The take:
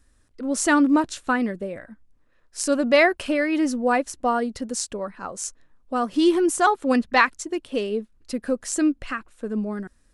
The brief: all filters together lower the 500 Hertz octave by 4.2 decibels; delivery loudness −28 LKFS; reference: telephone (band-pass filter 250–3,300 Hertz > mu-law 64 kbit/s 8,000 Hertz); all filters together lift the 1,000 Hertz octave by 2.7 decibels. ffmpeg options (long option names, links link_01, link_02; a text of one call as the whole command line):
ffmpeg -i in.wav -af "highpass=250,lowpass=3300,equalizer=frequency=500:width_type=o:gain=-7,equalizer=frequency=1000:width_type=o:gain=6,volume=-4.5dB" -ar 8000 -c:a pcm_mulaw out.wav